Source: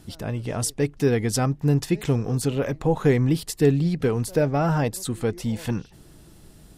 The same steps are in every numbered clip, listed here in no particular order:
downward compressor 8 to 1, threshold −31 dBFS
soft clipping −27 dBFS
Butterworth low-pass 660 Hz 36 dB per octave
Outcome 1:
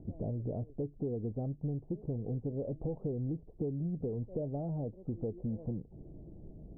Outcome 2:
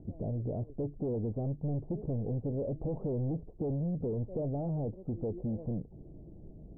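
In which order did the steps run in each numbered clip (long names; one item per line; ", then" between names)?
downward compressor, then soft clipping, then Butterworth low-pass
soft clipping, then downward compressor, then Butterworth low-pass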